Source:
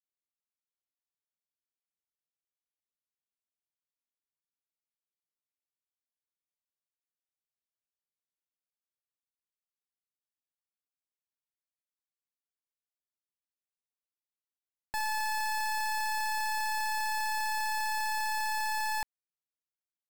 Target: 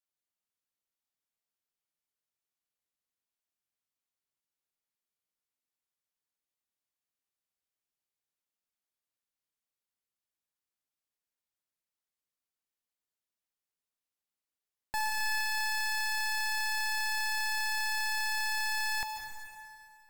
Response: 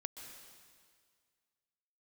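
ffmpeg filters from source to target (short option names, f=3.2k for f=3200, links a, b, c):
-filter_complex "[1:a]atrim=start_sample=2205,asetrate=39690,aresample=44100[a];[0:a][a]afir=irnorm=-1:irlink=0,volume=4dB"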